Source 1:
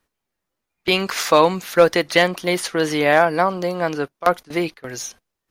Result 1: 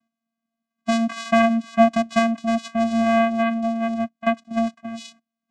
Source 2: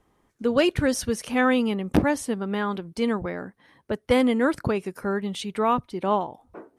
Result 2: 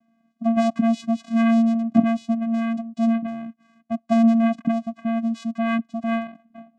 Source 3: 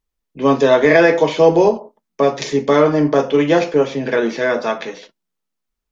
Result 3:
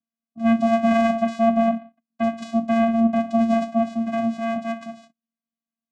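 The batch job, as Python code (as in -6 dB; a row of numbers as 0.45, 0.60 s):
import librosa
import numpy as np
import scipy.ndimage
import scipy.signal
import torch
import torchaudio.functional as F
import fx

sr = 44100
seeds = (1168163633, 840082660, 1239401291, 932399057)

y = fx.vocoder(x, sr, bands=4, carrier='square', carrier_hz=228.0)
y = y * 10.0 ** (-22 / 20.0) / np.sqrt(np.mean(np.square(y)))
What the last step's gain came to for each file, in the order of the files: -1.0, +3.5, -5.0 dB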